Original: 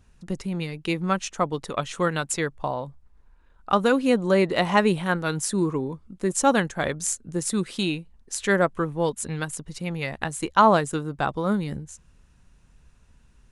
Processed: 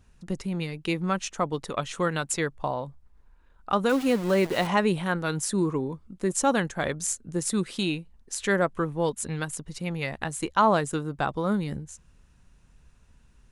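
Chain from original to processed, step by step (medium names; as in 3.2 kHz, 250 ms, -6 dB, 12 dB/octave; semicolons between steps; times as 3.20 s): in parallel at -1.5 dB: peak limiter -15.5 dBFS, peak gain reduction 11.5 dB; 3.89–4.67 s: on the sum: small samples zeroed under -26 dBFS; trim -6.5 dB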